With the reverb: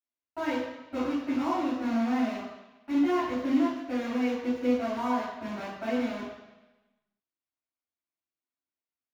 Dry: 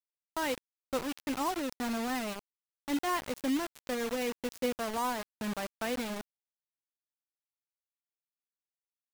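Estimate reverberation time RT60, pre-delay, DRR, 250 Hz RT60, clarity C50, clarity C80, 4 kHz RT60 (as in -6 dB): 1.1 s, 3 ms, -10.5 dB, 0.95 s, 1.0 dB, 4.0 dB, 1.1 s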